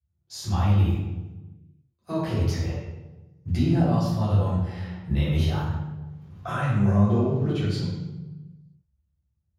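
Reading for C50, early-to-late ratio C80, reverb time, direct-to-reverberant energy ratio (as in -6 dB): -1.0 dB, 2.0 dB, 1.2 s, -11.5 dB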